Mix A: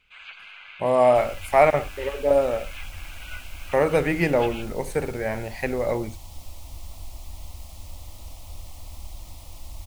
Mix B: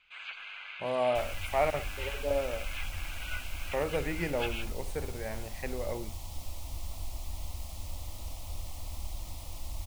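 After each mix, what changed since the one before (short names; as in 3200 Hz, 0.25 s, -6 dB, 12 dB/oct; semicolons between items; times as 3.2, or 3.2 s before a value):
speech -11.5 dB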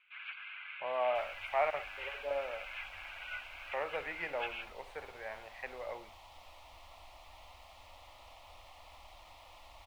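first sound: add band-pass 2100 Hz, Q 0.89; master: add three-band isolator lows -23 dB, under 580 Hz, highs -22 dB, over 3300 Hz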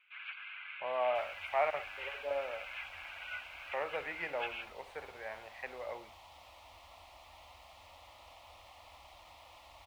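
master: add HPF 54 Hz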